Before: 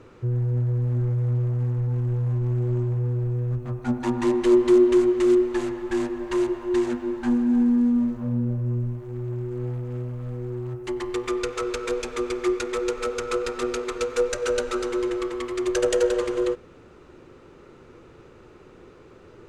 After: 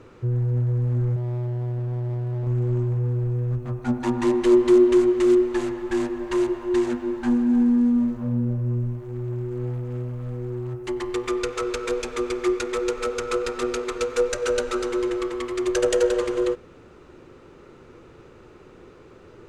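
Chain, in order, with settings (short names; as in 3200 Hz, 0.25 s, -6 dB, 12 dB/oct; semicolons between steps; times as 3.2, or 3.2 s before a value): 1.16–2.47 hard clip -26.5 dBFS, distortion -19 dB; gain +1 dB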